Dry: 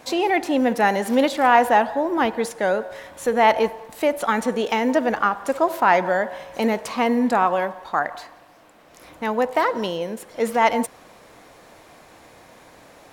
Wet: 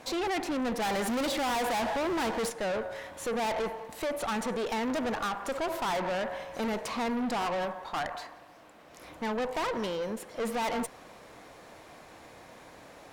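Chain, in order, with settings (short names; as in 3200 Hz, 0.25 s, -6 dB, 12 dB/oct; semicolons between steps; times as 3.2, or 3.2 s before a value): 0.82–2.5 sample leveller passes 2; high shelf 9100 Hz -5 dB; tube stage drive 27 dB, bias 0.35; gain -1.5 dB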